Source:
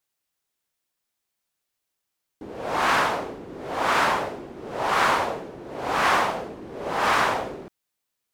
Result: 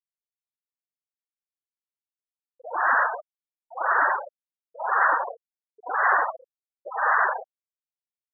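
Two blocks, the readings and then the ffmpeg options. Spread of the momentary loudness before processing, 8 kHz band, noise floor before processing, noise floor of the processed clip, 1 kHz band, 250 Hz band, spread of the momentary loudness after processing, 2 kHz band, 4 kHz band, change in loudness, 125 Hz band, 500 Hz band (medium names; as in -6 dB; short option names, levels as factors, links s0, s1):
16 LU, under -40 dB, -81 dBFS, under -85 dBFS, -0.5 dB, under -15 dB, 14 LU, +1.5 dB, under -40 dB, 0.0 dB, under -40 dB, -6.5 dB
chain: -af "highshelf=f=2300:t=q:w=3:g=-10,afftfilt=real='re*gte(hypot(re,im),0.224)':imag='im*gte(hypot(re,im),0.224)':win_size=1024:overlap=0.75,volume=0.75"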